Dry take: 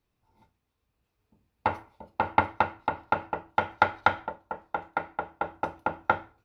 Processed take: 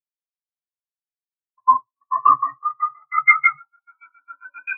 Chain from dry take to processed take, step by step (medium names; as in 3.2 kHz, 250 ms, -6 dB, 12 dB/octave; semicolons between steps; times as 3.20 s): gliding tape speed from 90% -> 180%; reverberation RT60 0.55 s, pre-delay 95 ms, DRR -11 dB; spectral contrast expander 4:1; trim -2 dB